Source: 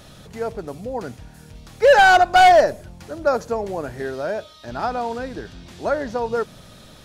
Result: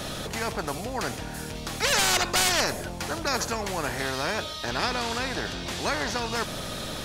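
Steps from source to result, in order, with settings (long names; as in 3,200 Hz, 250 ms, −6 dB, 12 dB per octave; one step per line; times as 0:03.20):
every bin compressed towards the loudest bin 4 to 1
level −2 dB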